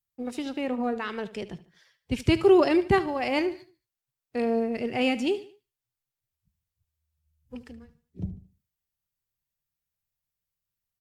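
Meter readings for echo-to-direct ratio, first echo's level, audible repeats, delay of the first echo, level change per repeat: -15.5 dB, -16.0 dB, 3, 74 ms, -8.5 dB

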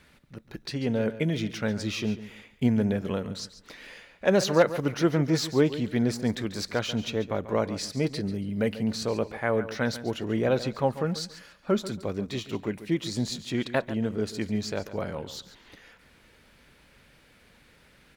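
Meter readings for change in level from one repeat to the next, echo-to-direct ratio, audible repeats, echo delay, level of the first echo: -12.5 dB, -13.5 dB, 2, 0.14 s, -14.0 dB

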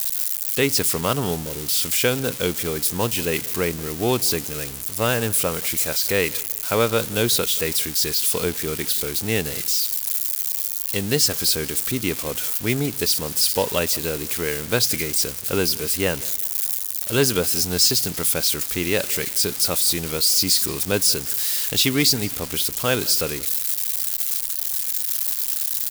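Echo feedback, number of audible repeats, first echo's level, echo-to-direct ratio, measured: 37%, 2, -22.0 dB, -21.5 dB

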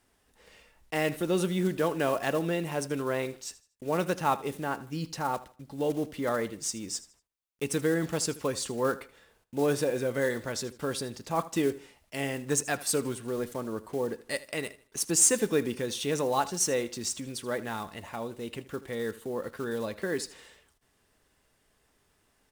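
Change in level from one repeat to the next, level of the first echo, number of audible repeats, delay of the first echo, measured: -10.5 dB, -17.5 dB, 2, 79 ms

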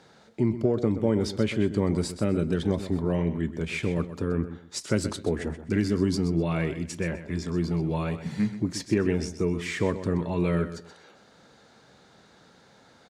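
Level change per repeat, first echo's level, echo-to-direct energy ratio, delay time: -12.5 dB, -12.0 dB, -11.5 dB, 0.127 s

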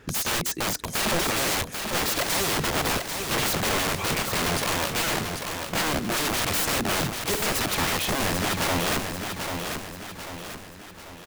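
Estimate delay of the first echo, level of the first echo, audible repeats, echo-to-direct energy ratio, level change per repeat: 0.791 s, -6.0 dB, 5, -5.0 dB, -6.5 dB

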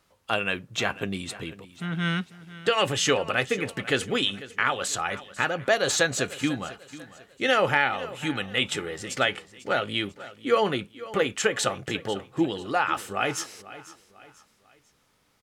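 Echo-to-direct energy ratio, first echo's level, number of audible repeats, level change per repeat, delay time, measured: -16.5 dB, -17.0 dB, 3, -8.0 dB, 0.495 s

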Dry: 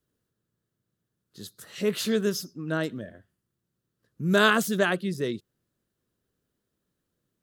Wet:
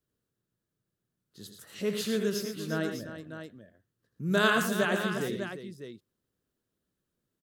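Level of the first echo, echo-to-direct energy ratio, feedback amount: -8.5 dB, -3.5 dB, no steady repeat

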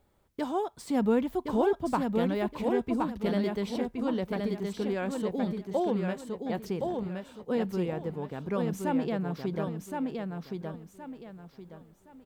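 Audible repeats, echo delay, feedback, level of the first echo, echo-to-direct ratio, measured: 3, 1.069 s, 30%, -4.0 dB, -3.5 dB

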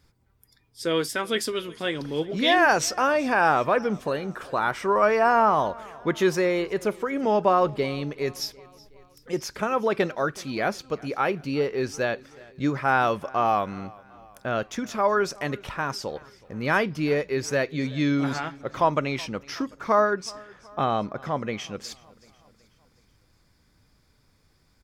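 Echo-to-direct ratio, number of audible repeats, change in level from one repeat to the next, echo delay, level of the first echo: -21.5 dB, 3, -5.5 dB, 0.373 s, -23.0 dB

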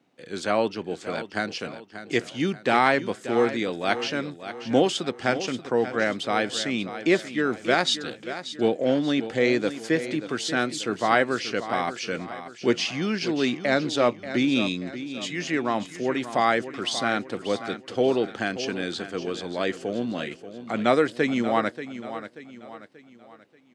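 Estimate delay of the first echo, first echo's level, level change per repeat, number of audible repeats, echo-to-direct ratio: 0.584 s, -12.0 dB, -7.5 dB, 4, -11.0 dB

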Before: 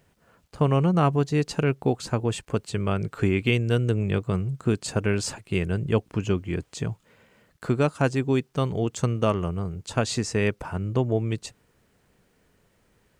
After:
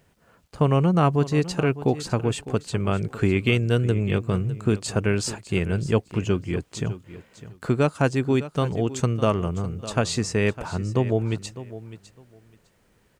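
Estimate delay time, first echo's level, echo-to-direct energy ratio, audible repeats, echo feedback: 0.605 s, -15.0 dB, -15.0 dB, 2, 18%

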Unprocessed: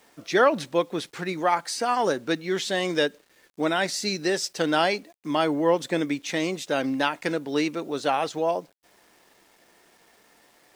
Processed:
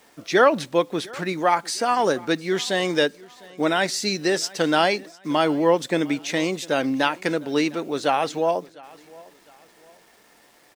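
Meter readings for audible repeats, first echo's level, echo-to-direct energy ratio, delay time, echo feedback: 2, -23.0 dB, -22.5 dB, 0.704 s, 37%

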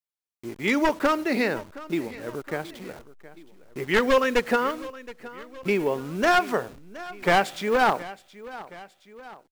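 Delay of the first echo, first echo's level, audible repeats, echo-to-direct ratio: 0.72 s, -18.0 dB, 2, -17.0 dB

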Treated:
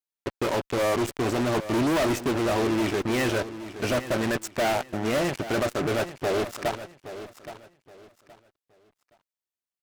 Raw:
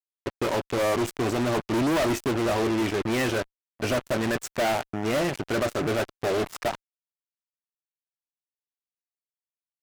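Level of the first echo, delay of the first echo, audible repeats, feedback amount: -13.0 dB, 0.821 s, 2, 26%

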